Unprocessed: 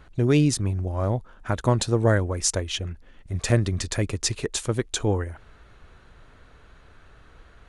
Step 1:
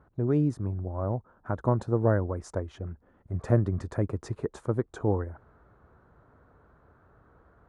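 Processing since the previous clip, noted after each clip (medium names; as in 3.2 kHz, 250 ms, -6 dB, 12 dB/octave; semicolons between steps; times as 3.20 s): FFT filter 960 Hz 0 dB, 1.4 kHz -3 dB, 2.7 kHz -23 dB; gain riding within 3 dB 2 s; high-pass 75 Hz; trim -4 dB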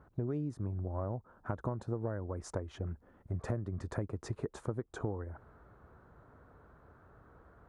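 compression 16:1, threshold -32 dBFS, peak gain reduction 16.5 dB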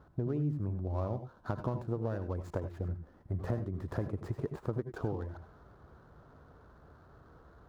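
median filter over 15 samples; reverberation, pre-delay 75 ms, DRR 10 dB; trim +1.5 dB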